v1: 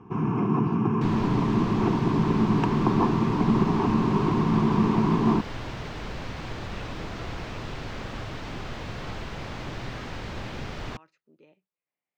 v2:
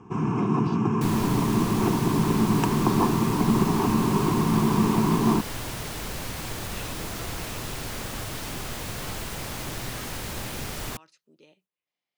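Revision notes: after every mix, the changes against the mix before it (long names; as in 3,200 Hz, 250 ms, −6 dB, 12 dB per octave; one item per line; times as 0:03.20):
speech: add flat-topped bell 4,200 Hz +8 dB 1.2 octaves
master: remove high-frequency loss of the air 190 metres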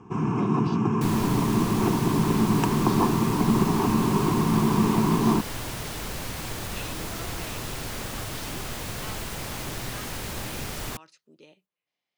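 speech +3.5 dB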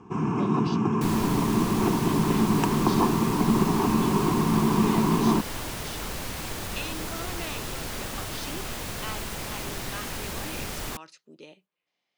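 speech +5.5 dB
master: add parametric band 120 Hz −4.5 dB 0.5 octaves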